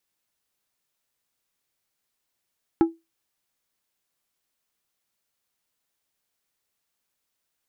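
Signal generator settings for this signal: glass hit plate, lowest mode 330 Hz, decay 0.21 s, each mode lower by 10 dB, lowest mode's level -10.5 dB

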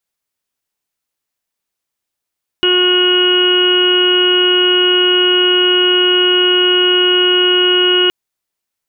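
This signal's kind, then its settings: steady additive tone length 5.47 s, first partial 362 Hz, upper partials -19/-14/-7/-18.5/-18.5/-16/2/-18 dB, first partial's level -13 dB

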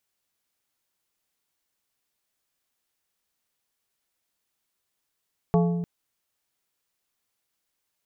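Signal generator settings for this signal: glass hit plate, length 0.30 s, lowest mode 172 Hz, modes 5, decay 1.70 s, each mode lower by 4 dB, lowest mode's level -17 dB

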